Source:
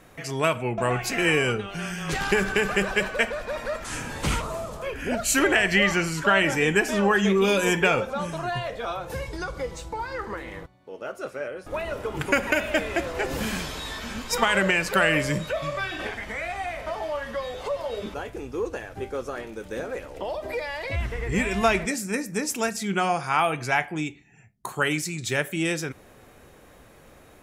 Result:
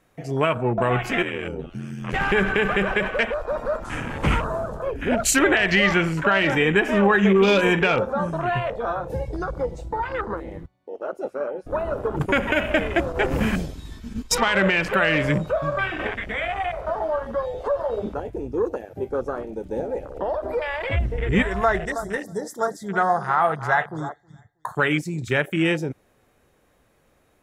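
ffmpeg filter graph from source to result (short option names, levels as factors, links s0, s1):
-filter_complex "[0:a]asettb=1/sr,asplit=3[s0][s1][s2];[s0]atrim=end=1.224[s3];[s1]atrim=start=1.22:end=2.14,asetpts=PTS-STARTPTS,afade=t=in:d=0.004:c=qsin,afade=t=out:st=0.916:d=0.004:c=qsin,acompressor=threshold=0.0447:ratio=5:attack=3.2:release=140:knee=1:detection=peak,aeval=exprs='val(0)*sin(2*PI*42*n/s)':c=same[s4];[s2]atrim=start=2.136[s5];[s3][s4]acrossfade=d=0.004:c1=hsin:c2=qsin[s6];[s6][s5]acrossfade=d=0.004:c1=qsin:c2=hsin,asettb=1/sr,asplit=3[s7][s8][s9];[s7]atrim=end=12.194[s10];[s8]atrim=start=12.19:end=14.39,asetpts=PTS-STARTPTS,afade=t=in:d=0.004:c=qsin,afade=t=out:st=2.196:d=0.004:c=qsin,agate=range=0.0224:threshold=0.0316:ratio=3:release=100:detection=peak,bass=f=250:g=4,treble=f=4000:g=5[s11];[s9]atrim=start=14.386[s12];[s10][s11]acrossfade=d=0.004:c1=hsin:c2=qsin[s13];[s13][s12]acrossfade=d=0.004:c1=qsin:c2=hsin,asettb=1/sr,asplit=3[s14][s15][s16];[s14]atrim=end=18.624[s17];[s15]atrim=start=18.62:end=19.1,asetpts=PTS-STARTPTS,afade=t=in:d=0.004:c=qsin,afade=t=out:st=0.476:d=0.004:c=qsin,highpass=f=110:p=1,equalizer=f=13000:w=4.8:g=13[s18];[s16]atrim=start=19.096[s19];[s17][s18]acrossfade=d=0.004:c1=hsin:c2=qsin[s20];[s20][s19]acrossfade=d=0.004:c1=qsin:c2=hsin,asettb=1/sr,asplit=3[s21][s22][s23];[s21]atrim=end=21.424[s24];[s22]atrim=start=21.42:end=24.75,asetpts=PTS-STARTPTS,afade=t=in:d=0.004:c=qsin,afade=t=out:st=3.326:d=0.004:c=qsin,asuperstop=centerf=2600:order=12:qfactor=2.1,equalizer=f=250:t=o:w=0.85:g=-14,asplit=2[s25][s26];[s26]adelay=319,lowpass=f=4300:p=1,volume=0.251,asplit=2[s27][s28];[s28]adelay=319,lowpass=f=4300:p=1,volume=0.27,asplit=2[s29][s30];[s30]adelay=319,lowpass=f=4300:p=1,volume=0.27[s31];[s25][s27][s29][s31]amix=inputs=4:normalize=0,atrim=end_sample=146853[s32];[s23]atrim=start=24.746[s33];[s24][s32]acrossfade=d=0.004:c1=hsin:c2=qsin[s34];[s34][s33]acrossfade=d=0.004:c1=qsin:c2=hsin,afwtdn=0.0251,alimiter=limit=0.2:level=0:latency=1:release=81,volume=1.88"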